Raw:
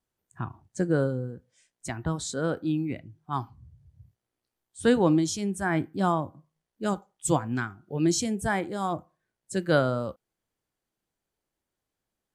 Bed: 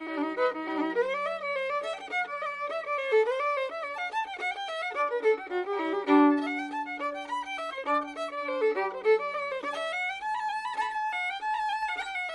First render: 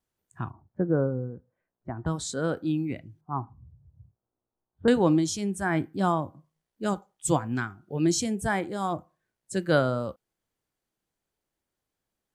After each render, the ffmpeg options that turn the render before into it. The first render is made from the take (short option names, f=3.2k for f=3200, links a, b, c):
-filter_complex "[0:a]asettb=1/sr,asplit=3[a][b][c];[a]atrim=end=0.504[d];[b]atrim=start=0.5:end=2.06,asetpts=PTS-STARTPTS,afade=t=in:d=0.004:c=qsin,afade=t=out:st=1.556:d=0.004:c=qsin,lowpass=f=1.3k:w=0.5412,lowpass=f=1.3k:w=1.3066[e];[c]atrim=start=2.056[f];[d][e]acrossfade=d=0.004:c1=hsin:c2=qsin[g];[g][f]acrossfade=d=0.004:c1=qsin:c2=hsin,asettb=1/sr,asplit=3[h][i][j];[h]atrim=end=3.214[k];[i]atrim=start=3.21:end=4.88,asetpts=PTS-STARTPTS,afade=t=in:d=0.004:c=qsin,afade=t=out:st=1.666:d=0.004:c=qsin,lowpass=f=1.2k:w=0.5412,lowpass=f=1.2k:w=1.3066[l];[j]atrim=start=4.876[m];[k][l]acrossfade=d=0.004:c1=hsin:c2=qsin[n];[n][m]acrossfade=d=0.004:c1=qsin:c2=hsin"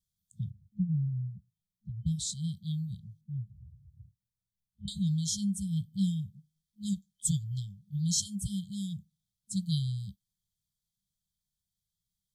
-af "afftfilt=real='re*(1-between(b*sr/4096,210,3100))':imag='im*(1-between(b*sr/4096,210,3100))':win_size=4096:overlap=0.75"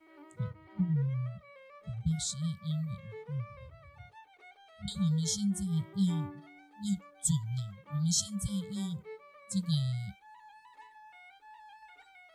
-filter_complex "[1:a]volume=-23.5dB[a];[0:a][a]amix=inputs=2:normalize=0"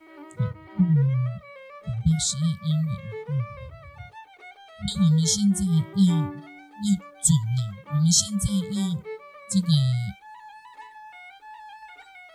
-af "volume=10dB"